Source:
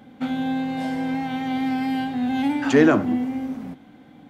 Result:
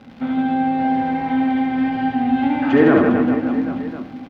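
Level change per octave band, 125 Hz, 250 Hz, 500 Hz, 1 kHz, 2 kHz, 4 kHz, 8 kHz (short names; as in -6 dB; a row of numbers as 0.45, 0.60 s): +3.5 dB, +5.0 dB, +4.0 dB, +7.5 dB, +3.0 dB, -2.5 dB, n/a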